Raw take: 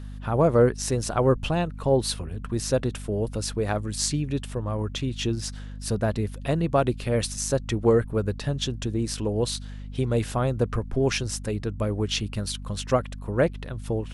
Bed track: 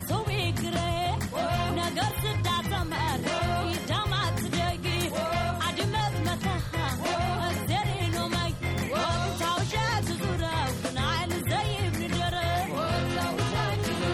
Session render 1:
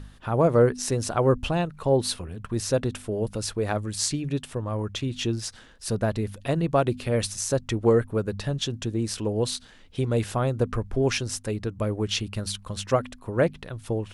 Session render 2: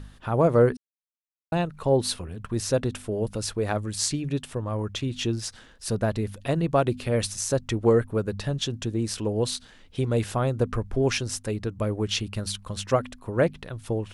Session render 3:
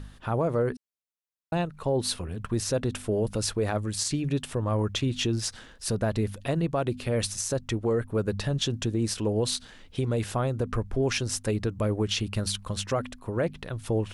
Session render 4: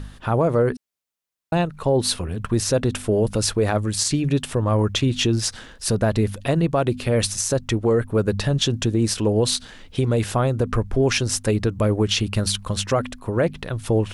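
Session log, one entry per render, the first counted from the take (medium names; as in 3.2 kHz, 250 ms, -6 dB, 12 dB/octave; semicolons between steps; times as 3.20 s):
de-hum 50 Hz, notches 5
0.77–1.52 s: mute
gain riding within 3 dB 0.5 s; peak limiter -17.5 dBFS, peak gain reduction 8 dB
trim +7 dB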